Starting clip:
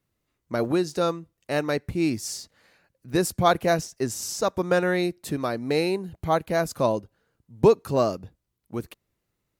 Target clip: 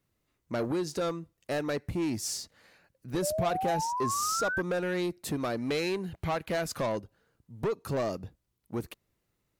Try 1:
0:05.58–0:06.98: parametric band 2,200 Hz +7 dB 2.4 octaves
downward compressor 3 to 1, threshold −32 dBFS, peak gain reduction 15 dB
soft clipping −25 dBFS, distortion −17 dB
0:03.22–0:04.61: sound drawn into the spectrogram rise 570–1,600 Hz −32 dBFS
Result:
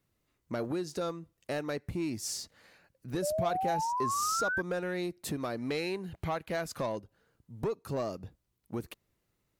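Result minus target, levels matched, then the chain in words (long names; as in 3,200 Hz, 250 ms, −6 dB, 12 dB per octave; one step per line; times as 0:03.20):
downward compressor: peak gain reduction +5.5 dB
0:05.58–0:06.98: parametric band 2,200 Hz +7 dB 2.4 octaves
downward compressor 3 to 1, threshold −23.5 dBFS, peak gain reduction 9 dB
soft clipping −25 dBFS, distortion −11 dB
0:03.22–0:04.61: sound drawn into the spectrogram rise 570–1,600 Hz −32 dBFS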